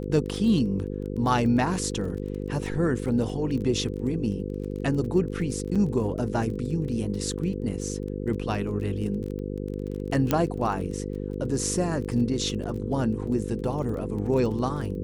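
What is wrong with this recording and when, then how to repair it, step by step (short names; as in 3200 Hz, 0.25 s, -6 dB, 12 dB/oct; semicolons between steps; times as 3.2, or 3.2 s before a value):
buzz 50 Hz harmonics 10 -32 dBFS
crackle 24/s -34 dBFS
5.75–5.76 gap 6.3 ms
10.31 pop -8 dBFS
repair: de-click; de-hum 50 Hz, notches 10; interpolate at 5.75, 6.3 ms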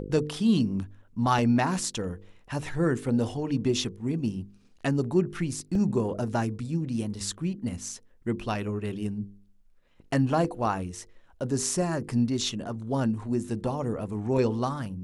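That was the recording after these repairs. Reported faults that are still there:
10.31 pop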